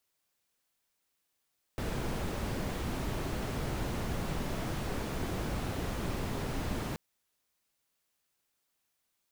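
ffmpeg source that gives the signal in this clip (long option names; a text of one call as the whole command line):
ffmpeg -f lavfi -i "anoisesrc=color=brown:amplitude=0.0933:duration=5.18:sample_rate=44100:seed=1" out.wav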